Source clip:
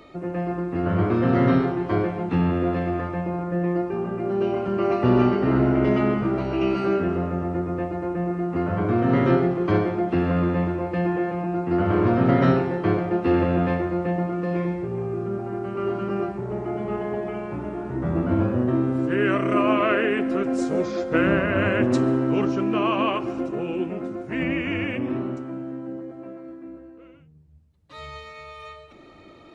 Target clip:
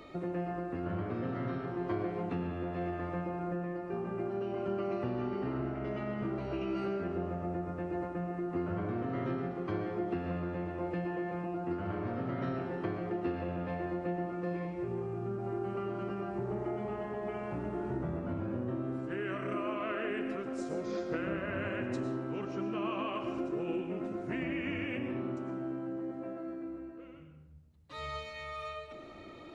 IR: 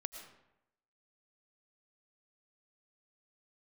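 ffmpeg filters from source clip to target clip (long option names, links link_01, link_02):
-filter_complex "[0:a]acompressor=threshold=-31dB:ratio=6[link_01];[1:a]atrim=start_sample=2205[link_02];[link_01][link_02]afir=irnorm=-1:irlink=0"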